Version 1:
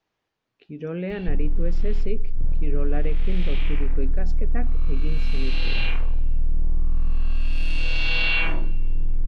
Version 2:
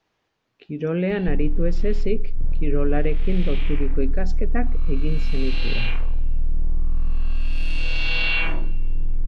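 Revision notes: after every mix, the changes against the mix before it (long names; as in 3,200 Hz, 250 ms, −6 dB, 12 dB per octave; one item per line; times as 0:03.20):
speech +6.5 dB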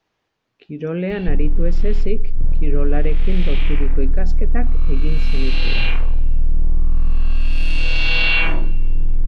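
background +5.5 dB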